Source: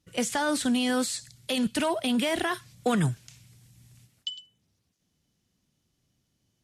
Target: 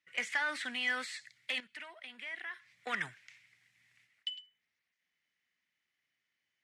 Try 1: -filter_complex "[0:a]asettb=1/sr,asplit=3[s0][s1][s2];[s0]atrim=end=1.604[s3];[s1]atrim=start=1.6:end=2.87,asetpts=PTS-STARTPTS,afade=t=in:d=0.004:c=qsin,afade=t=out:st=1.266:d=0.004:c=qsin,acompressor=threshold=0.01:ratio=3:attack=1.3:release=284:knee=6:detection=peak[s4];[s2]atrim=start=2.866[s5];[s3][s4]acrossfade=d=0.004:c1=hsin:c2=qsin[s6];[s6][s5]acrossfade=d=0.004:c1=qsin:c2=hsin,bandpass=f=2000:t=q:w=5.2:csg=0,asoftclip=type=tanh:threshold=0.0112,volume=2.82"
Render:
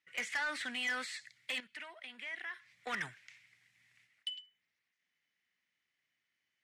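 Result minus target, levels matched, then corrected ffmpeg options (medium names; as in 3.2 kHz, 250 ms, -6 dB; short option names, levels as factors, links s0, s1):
saturation: distortion +10 dB
-filter_complex "[0:a]asettb=1/sr,asplit=3[s0][s1][s2];[s0]atrim=end=1.604[s3];[s1]atrim=start=1.6:end=2.87,asetpts=PTS-STARTPTS,afade=t=in:d=0.004:c=qsin,afade=t=out:st=1.266:d=0.004:c=qsin,acompressor=threshold=0.01:ratio=3:attack=1.3:release=284:knee=6:detection=peak[s4];[s2]atrim=start=2.866[s5];[s3][s4]acrossfade=d=0.004:c1=hsin:c2=qsin[s6];[s6][s5]acrossfade=d=0.004:c1=qsin:c2=hsin,bandpass=f=2000:t=q:w=5.2:csg=0,asoftclip=type=tanh:threshold=0.0282,volume=2.82"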